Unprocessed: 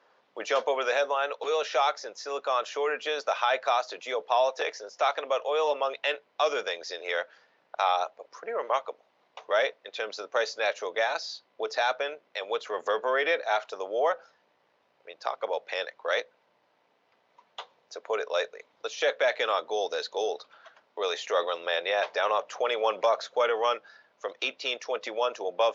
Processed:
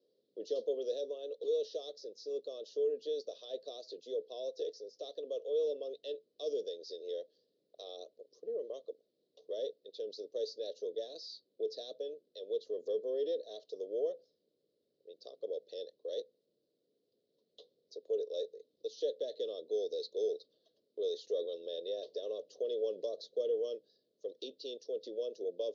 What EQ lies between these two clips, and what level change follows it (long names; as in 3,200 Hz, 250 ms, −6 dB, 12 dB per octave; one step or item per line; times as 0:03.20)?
elliptic band-stop filter 450–4,300 Hz, stop band 40 dB
high-frequency loss of the air 270 metres
low-shelf EQ 270 Hz −12 dB
+2.0 dB